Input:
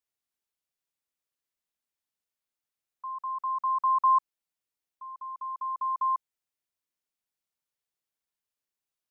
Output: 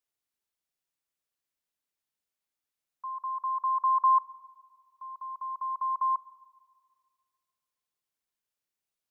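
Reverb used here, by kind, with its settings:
four-comb reverb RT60 1.9 s, combs from 25 ms, DRR 19.5 dB

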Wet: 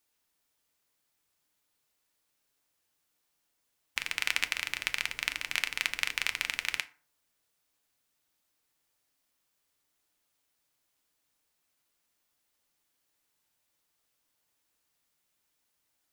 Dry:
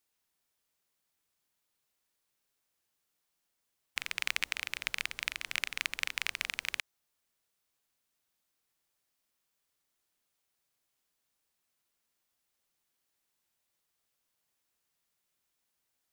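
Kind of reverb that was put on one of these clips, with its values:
feedback delay network reverb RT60 0.41 s, low-frequency decay 1×, high-frequency decay 0.6×, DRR 9 dB
level +3 dB

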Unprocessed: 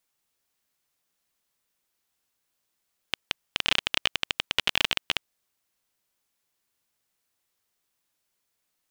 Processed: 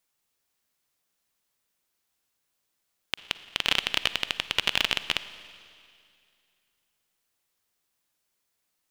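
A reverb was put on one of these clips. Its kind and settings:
four-comb reverb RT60 2.4 s, DRR 13.5 dB

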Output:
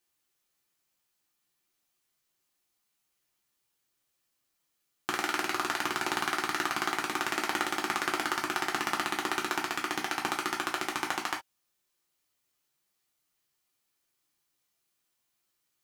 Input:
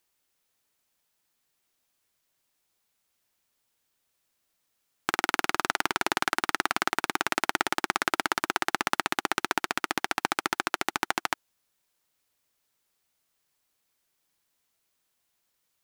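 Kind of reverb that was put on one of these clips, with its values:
reverb whose tail is shaped and stops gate 90 ms falling, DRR −1 dB
level −6.5 dB

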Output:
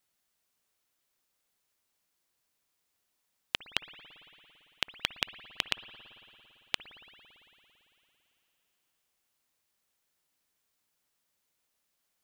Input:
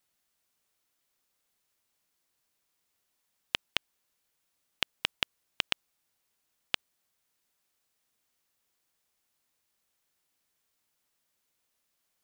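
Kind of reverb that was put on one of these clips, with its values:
spring reverb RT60 3.4 s, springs 56 ms, chirp 65 ms, DRR 12.5 dB
level −1 dB

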